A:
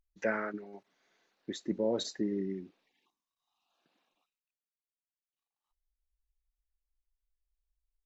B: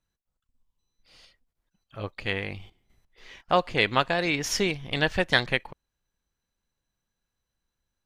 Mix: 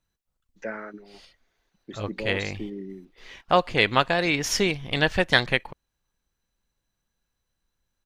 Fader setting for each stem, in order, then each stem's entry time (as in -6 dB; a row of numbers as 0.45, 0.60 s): -2.0, +2.5 dB; 0.40, 0.00 s